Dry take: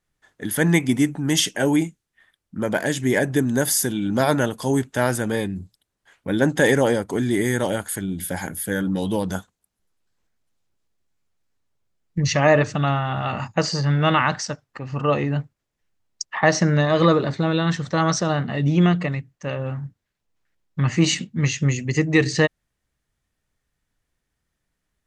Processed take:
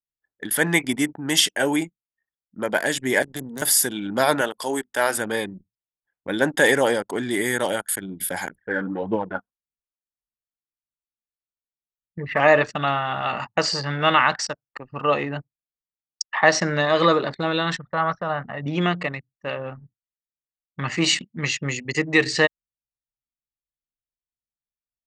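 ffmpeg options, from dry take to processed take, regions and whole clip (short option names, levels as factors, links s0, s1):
-filter_complex "[0:a]asettb=1/sr,asplit=3[s0][s1][s2];[s0]atrim=end=3.224[s3];[s1]atrim=start=3.22:end=3.62,asetpts=PTS-STARTPTS,afade=t=in:d=0.004:c=qsin,afade=t=out:st=0.396:d=0.004:c=qsin,aeval=exprs='if(lt(val(0),0),0.251*val(0),val(0))':c=same,bandreject=f=60:t=h:w=6,bandreject=f=120:t=h:w=6,bandreject=f=180:t=h:w=6,acrossover=split=250|3000[s4][s5][s6];[s5]acompressor=threshold=0.0158:ratio=6:attack=3.2:release=140:knee=2.83:detection=peak[s7];[s4][s7][s6]amix=inputs=3:normalize=0[s8];[s2]atrim=start=3.616[s9];[s3][s8]acrossfade=d=0.004:c1=hsin:c2=qsin[s10];[s10][s9]acrossfade=d=0.004:c1=qsin:c2=hsin,asettb=1/sr,asplit=3[s11][s12][s13];[s11]atrim=end=4.414[s14];[s12]atrim=start=4.41:end=5.17,asetpts=PTS-STARTPTS,afade=t=in:d=0.004:c=qsin,afade=t=out:st=0.756:d=0.004:c=qsin,equalizer=f=130:t=o:w=1.3:g=-11.5,bandreject=f=50:t=h:w=6,bandreject=f=100:t=h:w=6,bandreject=f=150:t=h:w=6,bandreject=f=200:t=h:w=6,bandreject=f=250:t=h:w=6[s15];[s13]atrim=start=5.166[s16];[s14][s15]acrossfade=d=0.004:c1=hsin:c2=qsin[s17];[s17][s16]acrossfade=d=0.004:c1=qsin:c2=hsin,asettb=1/sr,asplit=3[s18][s19][s20];[s18]atrim=end=8.554[s21];[s19]atrim=start=8.55:end=12.4,asetpts=PTS-STARTPTS,afade=t=in:d=0.004:c=qsin,afade=t=out:st=3.846:d=0.004:c=qsin,lowpass=f=2100:w=0.5412,lowpass=f=2100:w=1.3066,aphaser=in_gain=1:out_gain=1:delay=4.6:decay=0.49:speed=1.7:type=triangular[s22];[s20]atrim=start=12.396[s23];[s21][s22]acrossfade=d=0.004:c1=hsin:c2=qsin[s24];[s24][s23]acrossfade=d=0.004:c1=qsin:c2=hsin,asettb=1/sr,asplit=3[s25][s26][s27];[s25]atrim=end=17.784[s28];[s26]atrim=start=17.78:end=18.66,asetpts=PTS-STARTPTS,afade=t=in:d=0.004:c=qsin,afade=t=out:st=0.876:d=0.004:c=qsin,lowpass=1700,equalizer=f=340:t=o:w=0.88:g=-10.5[s29];[s27]atrim=start=18.656[s30];[s28][s29]acrossfade=d=0.004:c1=hsin:c2=qsin[s31];[s31][s30]acrossfade=d=0.004:c1=qsin:c2=hsin,highpass=f=650:p=1,bandreject=f=6300:w=7.5,anlmdn=2.51,volume=1.5"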